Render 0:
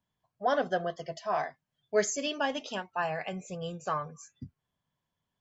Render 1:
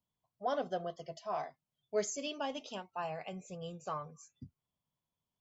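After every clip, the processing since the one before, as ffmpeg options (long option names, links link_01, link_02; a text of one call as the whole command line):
ffmpeg -i in.wav -af "equalizer=frequency=1700:width_type=o:width=0.4:gain=-10.5,volume=-6.5dB" out.wav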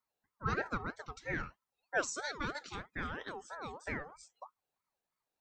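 ffmpeg -i in.wav -af "aeval=exprs='val(0)*sin(2*PI*880*n/s+880*0.35/3.1*sin(2*PI*3.1*n/s))':channel_layout=same,volume=2.5dB" out.wav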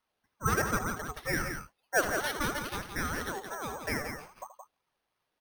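ffmpeg -i in.wav -af "aecho=1:1:78.72|172:0.251|0.447,acrusher=samples=6:mix=1:aa=0.000001,volume=6dB" out.wav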